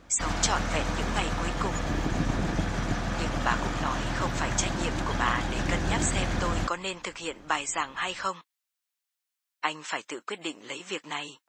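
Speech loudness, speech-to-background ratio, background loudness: −32.0 LKFS, −1.5 dB, −30.5 LKFS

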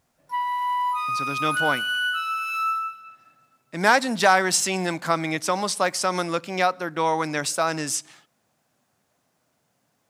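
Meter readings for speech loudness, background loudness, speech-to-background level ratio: −23.5 LKFS, −25.0 LKFS, 1.5 dB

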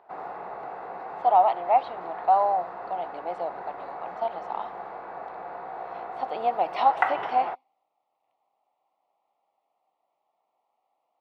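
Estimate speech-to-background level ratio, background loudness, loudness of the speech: 9.0 dB, −35.5 LKFS, −26.5 LKFS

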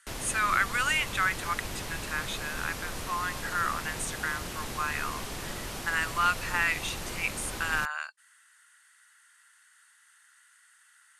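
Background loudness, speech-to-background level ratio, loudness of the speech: −37.0 LKFS, 6.5 dB, −30.5 LKFS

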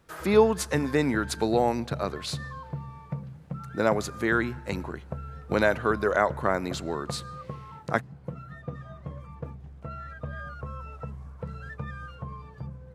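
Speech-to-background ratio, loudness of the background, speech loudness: 13.0 dB, −40.0 LKFS, −27.0 LKFS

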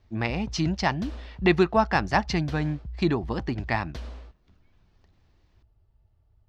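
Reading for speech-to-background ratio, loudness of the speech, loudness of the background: 14.5 dB, −26.0 LKFS, −40.5 LKFS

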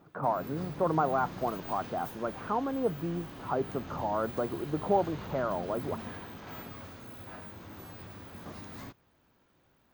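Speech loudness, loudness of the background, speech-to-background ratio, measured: −32.5 LKFS, −43.5 LKFS, 11.0 dB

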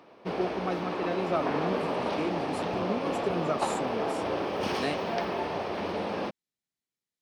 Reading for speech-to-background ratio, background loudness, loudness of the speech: −3.5 dB, −31.5 LKFS, −35.0 LKFS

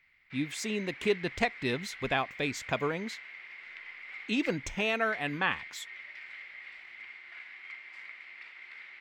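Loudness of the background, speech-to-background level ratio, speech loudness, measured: −44.0 LKFS, 12.0 dB, −32.0 LKFS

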